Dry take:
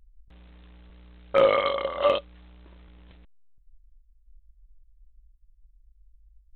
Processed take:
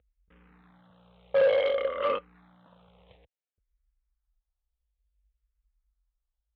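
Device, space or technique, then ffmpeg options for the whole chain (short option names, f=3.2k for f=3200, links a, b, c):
barber-pole phaser into a guitar amplifier: -filter_complex "[0:a]asplit=2[a][b];[b]afreqshift=-0.57[c];[a][c]amix=inputs=2:normalize=1,asoftclip=type=tanh:threshold=-23.5dB,highpass=97,equalizer=f=340:t=q:w=4:g=-9,equalizer=f=490:t=q:w=4:g=9,equalizer=f=770:t=q:w=4:g=4,equalizer=f=1.3k:t=q:w=4:g=4,lowpass=f=3.7k:w=0.5412,lowpass=f=3.7k:w=1.3066"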